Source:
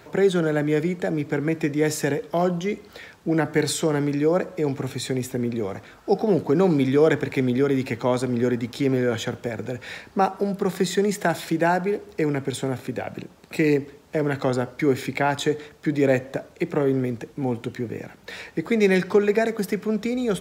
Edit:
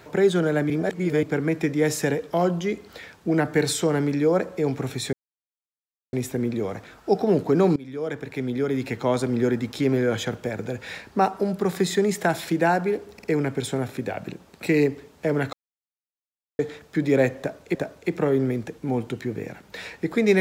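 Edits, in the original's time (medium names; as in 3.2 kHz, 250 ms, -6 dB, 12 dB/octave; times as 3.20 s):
0.70–1.23 s: reverse
5.13 s: insert silence 1.00 s
6.76–8.21 s: fade in, from -22.5 dB
12.14 s: stutter 0.05 s, 3 plays
14.43–15.49 s: mute
16.29–16.65 s: loop, 2 plays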